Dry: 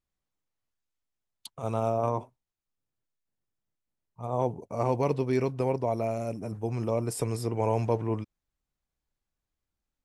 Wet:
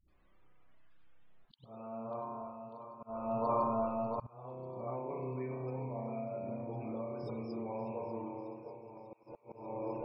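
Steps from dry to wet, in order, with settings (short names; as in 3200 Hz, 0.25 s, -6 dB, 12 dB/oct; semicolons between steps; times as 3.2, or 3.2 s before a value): regenerating reverse delay 0.345 s, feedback 66%, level -13.5 dB; LPF 5400 Hz 24 dB/oct; low shelf 87 Hz -5 dB; notches 50/100/150/200/250/300/350/400/450 Hz; spring tank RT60 1 s, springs 31 ms, chirp 80 ms, DRR -2 dB; compressor 6:1, threshold -27 dBFS, peak gain reduction 11 dB; loudest bins only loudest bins 64; dispersion highs, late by 83 ms, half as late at 320 Hz; flipped gate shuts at -34 dBFS, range -27 dB; auto swell 0.628 s; thin delay 0.593 s, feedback 69%, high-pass 1900 Hz, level -15 dB; gain +17.5 dB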